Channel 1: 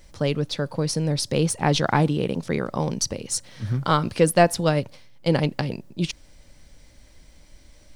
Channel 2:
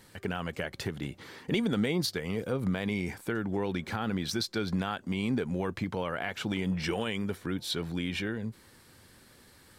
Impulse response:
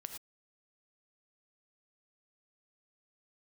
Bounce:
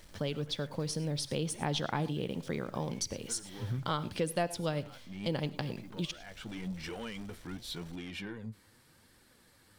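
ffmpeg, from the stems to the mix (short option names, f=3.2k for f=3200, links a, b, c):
-filter_complex "[0:a]equalizer=f=3.3k:w=5.3:g=7.5,acrusher=bits=7:mix=0:aa=0.5,volume=-9.5dB,asplit=3[a][b][c];[b]volume=-5.5dB[d];[1:a]asoftclip=type=tanh:threshold=-27.5dB,flanger=delay=2:depth=8.7:regen=49:speed=0.87:shape=triangular,bandreject=f=390:w=12,volume=-2dB[e];[c]apad=whole_len=431359[f];[e][f]sidechaincompress=threshold=-41dB:ratio=8:attack=23:release=564[g];[2:a]atrim=start_sample=2205[h];[d][h]afir=irnorm=-1:irlink=0[i];[a][g][i]amix=inputs=3:normalize=0,acompressor=threshold=-34dB:ratio=2"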